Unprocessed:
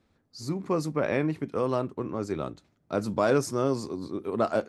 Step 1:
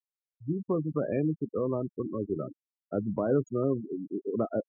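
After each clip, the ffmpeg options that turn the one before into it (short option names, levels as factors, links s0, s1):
-filter_complex "[0:a]afftfilt=real='re*gte(hypot(re,im),0.0794)':imag='im*gte(hypot(re,im),0.0794)':win_size=1024:overlap=0.75,acrossover=split=530|4200[s0][s1][s2];[s1]acompressor=threshold=0.0112:ratio=5[s3];[s0][s3][s2]amix=inputs=3:normalize=0"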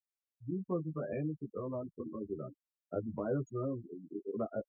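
-filter_complex "[0:a]adynamicequalizer=threshold=0.01:dfrequency=290:dqfactor=0.97:tfrequency=290:tqfactor=0.97:attack=5:release=100:ratio=0.375:range=3:mode=cutabove:tftype=bell,asplit=2[s0][s1];[s1]adelay=9.8,afreqshift=-0.96[s2];[s0][s2]amix=inputs=2:normalize=1,volume=0.708"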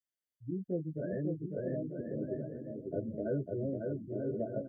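-filter_complex "[0:a]asplit=2[s0][s1];[s1]aecho=0:1:550|935|1204|1393|1525:0.631|0.398|0.251|0.158|0.1[s2];[s0][s2]amix=inputs=2:normalize=0,afftfilt=real='re*eq(mod(floor(b*sr/1024/720),2),0)':imag='im*eq(mod(floor(b*sr/1024/720),2),0)':win_size=1024:overlap=0.75"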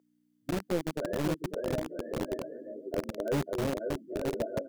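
-filter_complex "[0:a]aeval=exprs='val(0)+0.00158*(sin(2*PI*60*n/s)+sin(2*PI*2*60*n/s)/2+sin(2*PI*3*60*n/s)/3+sin(2*PI*4*60*n/s)/4+sin(2*PI*5*60*n/s)/5)':c=same,acrossover=split=290[s0][s1];[s0]acrusher=bits=5:mix=0:aa=0.000001[s2];[s2][s1]amix=inputs=2:normalize=0,volume=1.58"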